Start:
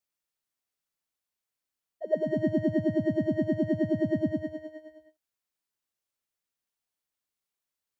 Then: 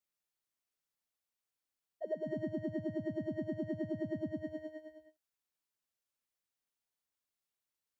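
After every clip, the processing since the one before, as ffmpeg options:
ffmpeg -i in.wav -af "acompressor=threshold=-31dB:ratio=6,volume=-3.5dB" out.wav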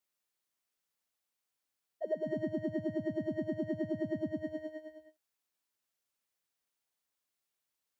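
ffmpeg -i in.wav -af "lowshelf=frequency=130:gain=-6,volume=3.5dB" out.wav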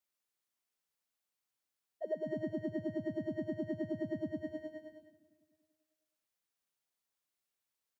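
ffmpeg -i in.wav -filter_complex "[0:a]asplit=2[link_01][link_02];[link_02]adelay=385,lowpass=frequency=2000:poles=1,volume=-20.5dB,asplit=2[link_03][link_04];[link_04]adelay=385,lowpass=frequency=2000:poles=1,volume=0.35,asplit=2[link_05][link_06];[link_06]adelay=385,lowpass=frequency=2000:poles=1,volume=0.35[link_07];[link_01][link_03][link_05][link_07]amix=inputs=4:normalize=0,volume=-2.5dB" out.wav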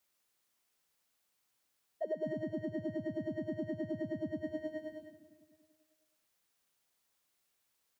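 ffmpeg -i in.wav -af "alimiter=level_in=13.5dB:limit=-24dB:level=0:latency=1:release=400,volume=-13.5dB,volume=9dB" out.wav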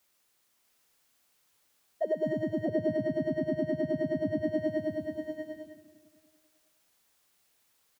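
ffmpeg -i in.wav -af "aecho=1:1:641:0.631,volume=7dB" out.wav

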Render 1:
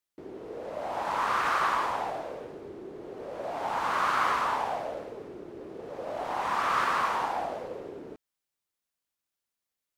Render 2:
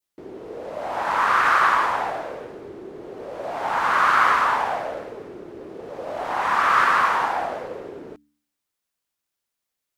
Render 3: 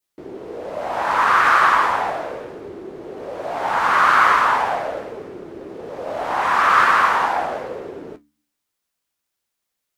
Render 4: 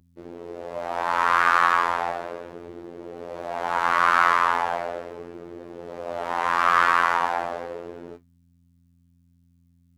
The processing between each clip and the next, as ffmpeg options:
ffmpeg -i in.wav -af "bandreject=frequency=73.4:width_type=h:width=4,bandreject=frequency=146.8:width_type=h:width=4,bandreject=frequency=220.2:width_type=h:width=4,bandreject=frequency=293.6:width_type=h:width=4,adynamicequalizer=threshold=0.00794:dfrequency=1600:dqfactor=1.2:tfrequency=1600:tqfactor=1.2:attack=5:release=100:ratio=0.375:range=3.5:mode=boostabove:tftype=bell,volume=4.5dB" out.wav
ffmpeg -i in.wav -af "flanger=delay=9.9:depth=5.8:regen=-54:speed=1.5:shape=triangular,volume=7.5dB" out.wav
ffmpeg -i in.wav -af "aeval=exprs='val(0)+0.00282*(sin(2*PI*60*n/s)+sin(2*PI*2*60*n/s)/2+sin(2*PI*3*60*n/s)/3+sin(2*PI*4*60*n/s)/4+sin(2*PI*5*60*n/s)/5)':channel_layout=same,afftfilt=real='hypot(re,im)*cos(PI*b)':imag='0':win_size=2048:overlap=0.75,volume=-1.5dB" out.wav

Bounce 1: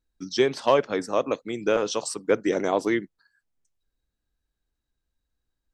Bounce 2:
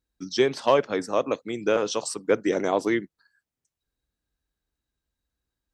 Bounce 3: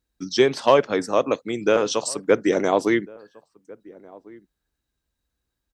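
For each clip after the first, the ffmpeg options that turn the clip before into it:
ffmpeg -i in.wav -af "highpass=44" out.wav
ffmpeg -i in.wav -filter_complex "[0:a]asplit=2[link_01][link_02];[link_02]adelay=1399,volume=-23dB,highshelf=frequency=4000:gain=-31.5[link_03];[link_01][link_03]amix=inputs=2:normalize=0,volume=4dB" out.wav

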